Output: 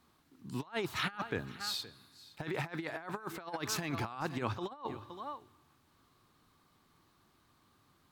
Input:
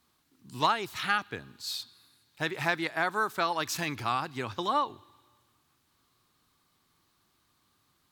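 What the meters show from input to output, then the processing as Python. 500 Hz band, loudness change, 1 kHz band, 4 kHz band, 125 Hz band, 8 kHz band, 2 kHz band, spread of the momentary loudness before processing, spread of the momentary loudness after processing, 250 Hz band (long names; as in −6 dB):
−5.5 dB, −8.0 dB, −11.0 dB, −5.5 dB, 0.0 dB, −3.5 dB, −9.5 dB, 9 LU, 10 LU, −2.0 dB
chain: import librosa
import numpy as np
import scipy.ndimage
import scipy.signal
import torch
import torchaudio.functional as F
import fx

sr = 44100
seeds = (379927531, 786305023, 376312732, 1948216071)

p1 = fx.high_shelf(x, sr, hz=2200.0, db=-9.0)
p2 = fx.hum_notches(p1, sr, base_hz=60, count=2)
p3 = p2 + fx.echo_single(p2, sr, ms=517, db=-19.5, dry=0)
y = fx.over_compress(p3, sr, threshold_db=-37.0, ratio=-0.5)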